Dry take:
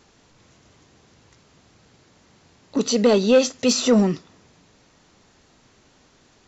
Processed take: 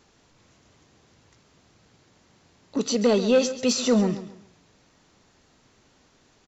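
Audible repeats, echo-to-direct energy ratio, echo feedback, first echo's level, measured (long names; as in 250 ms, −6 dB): 3, −13.0 dB, 29%, −13.5 dB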